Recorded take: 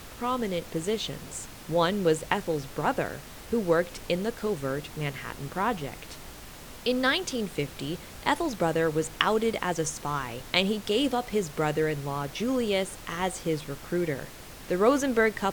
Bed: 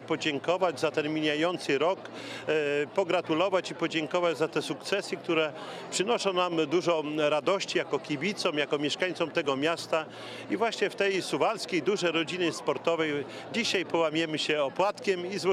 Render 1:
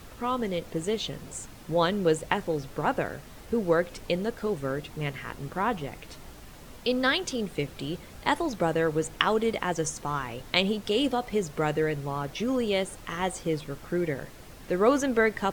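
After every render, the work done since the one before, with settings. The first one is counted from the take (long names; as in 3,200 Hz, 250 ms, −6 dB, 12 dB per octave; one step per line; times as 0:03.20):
broadband denoise 6 dB, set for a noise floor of −45 dBFS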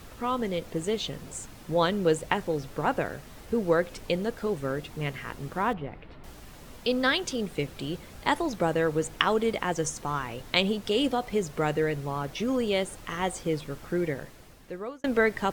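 0:05.73–0:06.24: high-frequency loss of the air 430 metres
0:14.05–0:15.04: fade out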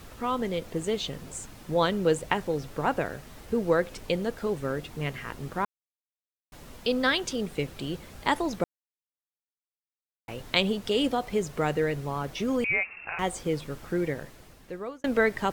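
0:05.65–0:06.52: silence
0:08.64–0:10.28: silence
0:12.64–0:13.19: voice inversion scrambler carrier 2,700 Hz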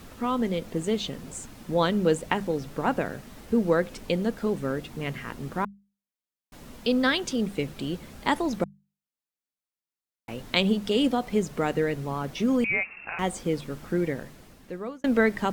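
parametric band 220 Hz +7 dB 0.72 octaves
mains-hum notches 50/100/150/200 Hz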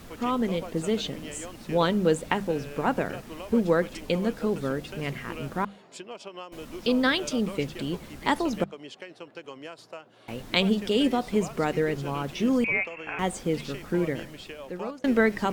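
mix in bed −14 dB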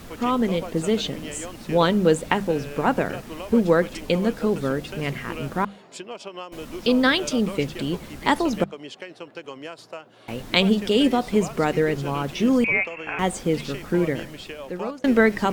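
level +4.5 dB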